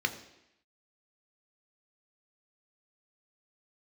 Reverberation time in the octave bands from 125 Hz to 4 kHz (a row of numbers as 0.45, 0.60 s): 0.70, 0.85, 0.80, 0.85, 0.95, 0.85 s